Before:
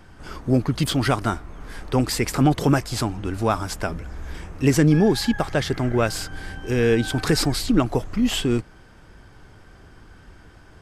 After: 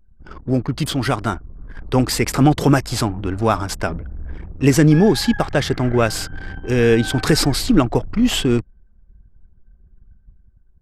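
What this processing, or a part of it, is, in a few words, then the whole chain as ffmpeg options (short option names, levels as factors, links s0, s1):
voice memo with heavy noise removal: -af "anlmdn=3.98,dynaudnorm=f=990:g=3:m=2.24"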